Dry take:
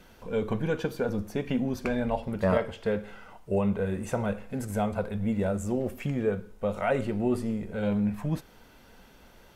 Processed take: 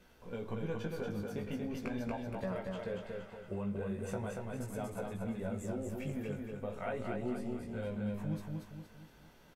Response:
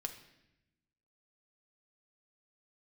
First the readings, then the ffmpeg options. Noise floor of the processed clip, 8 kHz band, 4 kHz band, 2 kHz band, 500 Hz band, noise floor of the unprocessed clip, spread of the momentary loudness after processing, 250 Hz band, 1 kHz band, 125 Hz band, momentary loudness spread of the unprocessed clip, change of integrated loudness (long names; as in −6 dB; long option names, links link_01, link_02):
−61 dBFS, −7.5 dB, −8.5 dB, −10.0 dB, −10.5 dB, −55 dBFS, 7 LU, −9.5 dB, −10.5 dB, −8.5 dB, 6 LU, −10.0 dB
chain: -filter_complex "[0:a]acompressor=threshold=-27dB:ratio=6,flanger=delay=16:depth=3.5:speed=0.41,asplit=2[link_01][link_02];[link_02]aecho=0:1:234|468|702|936|1170|1404:0.668|0.294|0.129|0.0569|0.0251|0.011[link_03];[link_01][link_03]amix=inputs=2:normalize=0,volume=-5.5dB"